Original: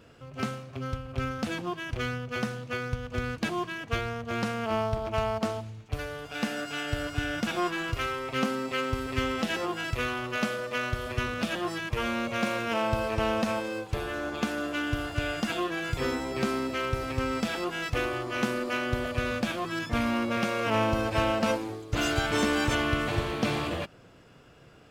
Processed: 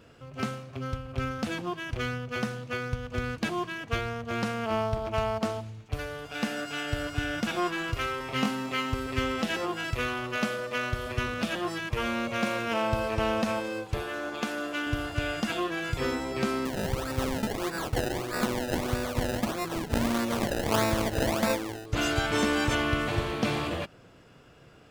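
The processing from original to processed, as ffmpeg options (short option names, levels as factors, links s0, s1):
-filter_complex "[0:a]asettb=1/sr,asplit=3[s0][s1][s2];[s0]atrim=end=8.184[s3];[s1]atrim=start=8.18:end=8.94,asetpts=PTS-STARTPTS,afade=t=in:d=0.004:c=qsin,afade=t=out:st=0.756:d=0.004:c=qsin,asplit=2[s4][s5];[s5]adelay=24,volume=0.668[s6];[s4][s6]amix=inputs=2:normalize=0,atrim=end_sample=33516[s7];[s2]atrim=start=8.936[s8];[s3][s7]acrossfade=d=0.004:c1=hsin:c2=qsin[s9];[s9][s8]acrossfade=d=0.004:c1=qsin:c2=hsin,asettb=1/sr,asplit=3[s10][s11][s12];[s10]atrim=end=14.024[s13];[s11]atrim=start=14.02:end=14.87,asetpts=PTS-STARTPTS,afade=t=in:d=0.004:c=qsin,afade=t=out:st=0.846:d=0.004:c=qsin,highpass=f=270:p=1[s14];[s12]atrim=start=14.866[s15];[s13][s14]acrossfade=d=0.004:c1=hsin:c2=qsin[s16];[s16][s15]acrossfade=d=0.004:c1=qsin:c2=hsin,asettb=1/sr,asplit=3[s17][s18][s19];[s17]atrim=end=16.654[s20];[s18]atrim=start=16.65:end=21.86,asetpts=PTS-STARTPTS,afade=t=in:d=0.004:c=qsin,afade=t=out:st=5.206:d=0.004:c=qsin,acrusher=samples=27:mix=1:aa=0.000001:lfo=1:lforange=27:lforate=1.6[s21];[s19]atrim=start=21.856[s22];[s20][s21]acrossfade=d=0.004:c1=hsin:c2=qsin[s23];[s23][s22]acrossfade=d=0.004:c1=qsin:c2=hsin"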